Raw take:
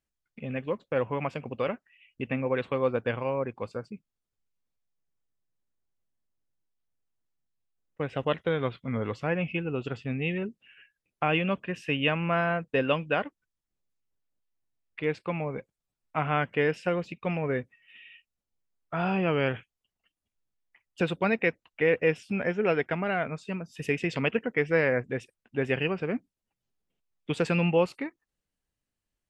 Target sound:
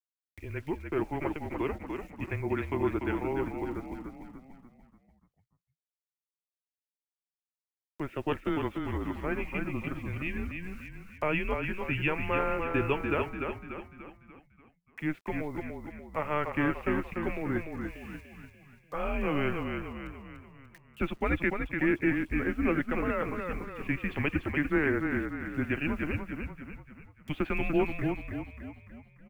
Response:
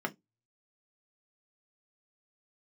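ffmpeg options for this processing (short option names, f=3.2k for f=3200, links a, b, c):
-filter_complex "[0:a]highpass=f=170:t=q:w=0.5412,highpass=f=170:t=q:w=1.307,lowpass=f=3.3k:t=q:w=0.5176,lowpass=f=3.3k:t=q:w=0.7071,lowpass=f=3.3k:t=q:w=1.932,afreqshift=-150,acrusher=bits=9:mix=0:aa=0.000001,acompressor=mode=upward:threshold=-44dB:ratio=2.5,asplit=2[a][b];[b]asplit=6[c][d][e][f][g][h];[c]adelay=293,afreqshift=-31,volume=-5dB[i];[d]adelay=586,afreqshift=-62,volume=-11.2dB[j];[e]adelay=879,afreqshift=-93,volume=-17.4dB[k];[f]adelay=1172,afreqshift=-124,volume=-23.6dB[l];[g]adelay=1465,afreqshift=-155,volume=-29.8dB[m];[h]adelay=1758,afreqshift=-186,volume=-36dB[n];[i][j][k][l][m][n]amix=inputs=6:normalize=0[o];[a][o]amix=inputs=2:normalize=0,volume=-3dB"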